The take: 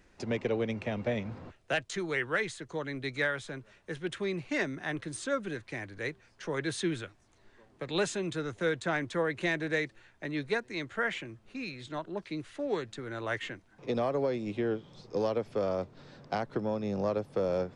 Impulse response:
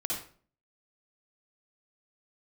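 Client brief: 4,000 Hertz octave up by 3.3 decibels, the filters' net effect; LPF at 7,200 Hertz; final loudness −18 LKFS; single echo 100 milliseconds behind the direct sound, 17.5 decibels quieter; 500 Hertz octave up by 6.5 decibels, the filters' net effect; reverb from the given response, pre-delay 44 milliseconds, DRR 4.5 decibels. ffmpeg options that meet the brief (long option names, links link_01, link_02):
-filter_complex "[0:a]lowpass=7200,equalizer=frequency=500:width_type=o:gain=7.5,equalizer=frequency=4000:width_type=o:gain=4,aecho=1:1:100:0.133,asplit=2[link_01][link_02];[1:a]atrim=start_sample=2205,adelay=44[link_03];[link_02][link_03]afir=irnorm=-1:irlink=0,volume=-8.5dB[link_04];[link_01][link_04]amix=inputs=2:normalize=0,volume=9.5dB"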